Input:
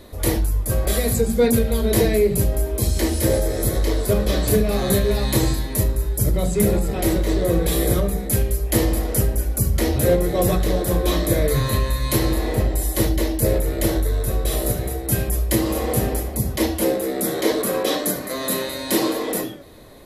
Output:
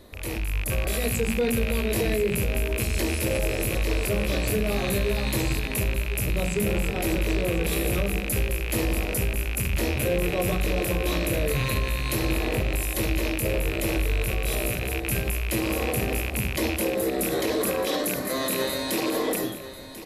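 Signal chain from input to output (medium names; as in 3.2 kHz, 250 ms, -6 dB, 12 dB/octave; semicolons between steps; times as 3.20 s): rattle on loud lows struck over -27 dBFS, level -13 dBFS; peak limiter -16.5 dBFS, peak gain reduction 11.5 dB; level rider gain up to 6 dB; on a send: delay 1041 ms -14 dB; on the sum: trim -6 dB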